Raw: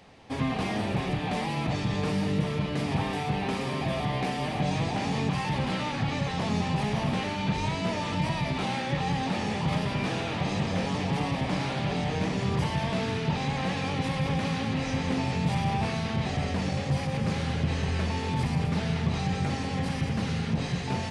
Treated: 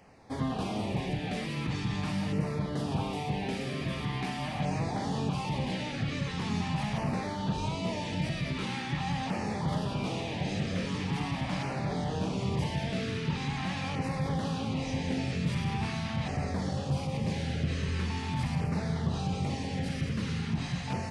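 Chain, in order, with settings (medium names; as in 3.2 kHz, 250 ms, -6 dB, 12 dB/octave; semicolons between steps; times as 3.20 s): LFO notch saw down 0.43 Hz 360–3800 Hz; trim -3 dB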